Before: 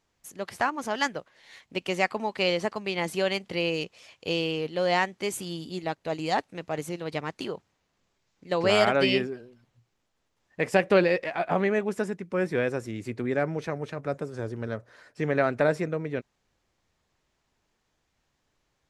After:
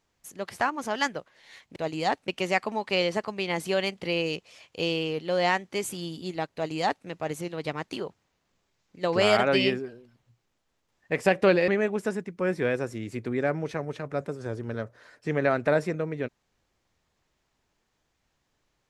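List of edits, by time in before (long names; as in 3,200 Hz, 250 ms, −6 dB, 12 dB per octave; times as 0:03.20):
0:06.02–0:06.54: duplicate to 0:01.76
0:11.16–0:11.61: remove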